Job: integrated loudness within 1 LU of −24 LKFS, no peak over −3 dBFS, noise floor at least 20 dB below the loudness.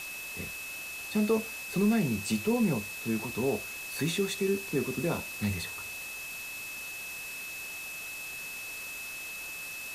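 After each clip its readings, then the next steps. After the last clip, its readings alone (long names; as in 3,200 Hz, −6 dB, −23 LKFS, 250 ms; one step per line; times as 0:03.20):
interfering tone 2,600 Hz; level of the tone −39 dBFS; background noise floor −40 dBFS; target noise floor −53 dBFS; integrated loudness −32.5 LKFS; sample peak −16.0 dBFS; target loudness −24.0 LKFS
→ notch filter 2,600 Hz, Q 30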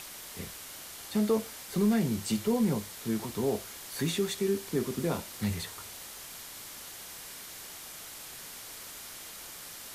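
interfering tone none found; background noise floor −45 dBFS; target noise floor −54 dBFS
→ noise reduction from a noise print 9 dB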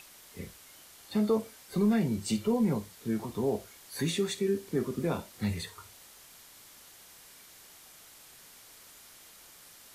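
background noise floor −54 dBFS; integrated loudness −31.5 LKFS; sample peak −17.0 dBFS; target loudness −24.0 LKFS
→ level +7.5 dB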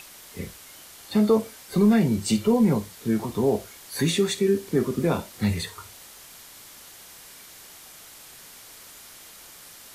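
integrated loudness −24.0 LKFS; sample peak −9.5 dBFS; background noise floor −47 dBFS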